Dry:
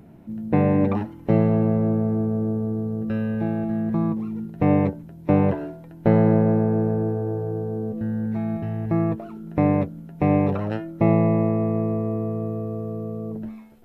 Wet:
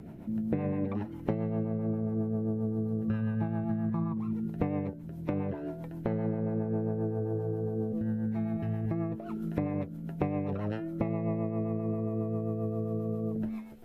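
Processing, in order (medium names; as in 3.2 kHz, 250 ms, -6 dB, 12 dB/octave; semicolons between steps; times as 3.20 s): 3.08–4.33 s: graphic EQ 125/500/1000 Hz +8/-5/+10 dB; compression 6:1, threshold -31 dBFS, peak gain reduction 18 dB; rotary cabinet horn 7.5 Hz; 9.42–9.97 s: tape noise reduction on one side only encoder only; trim +3.5 dB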